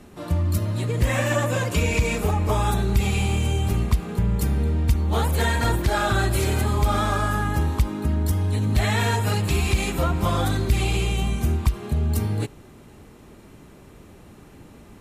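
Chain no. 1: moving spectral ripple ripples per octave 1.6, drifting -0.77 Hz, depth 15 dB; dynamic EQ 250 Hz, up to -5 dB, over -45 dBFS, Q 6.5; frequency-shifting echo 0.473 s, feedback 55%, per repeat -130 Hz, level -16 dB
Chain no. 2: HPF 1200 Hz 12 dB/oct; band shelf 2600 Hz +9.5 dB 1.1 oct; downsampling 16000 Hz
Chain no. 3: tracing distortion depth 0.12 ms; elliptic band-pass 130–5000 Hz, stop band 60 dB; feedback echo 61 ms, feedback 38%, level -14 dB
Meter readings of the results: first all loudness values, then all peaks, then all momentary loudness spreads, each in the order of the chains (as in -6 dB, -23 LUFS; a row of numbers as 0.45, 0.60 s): -21.0, -24.5, -26.5 LUFS; -5.5, -8.5, -11.0 dBFS; 6, 17, 7 LU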